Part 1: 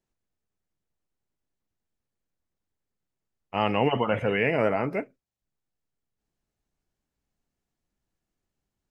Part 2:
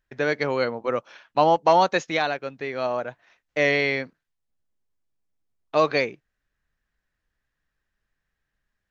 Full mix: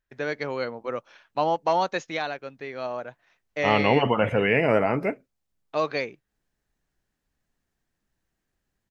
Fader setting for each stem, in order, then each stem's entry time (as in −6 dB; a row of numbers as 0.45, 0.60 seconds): +3.0, −5.5 decibels; 0.10, 0.00 seconds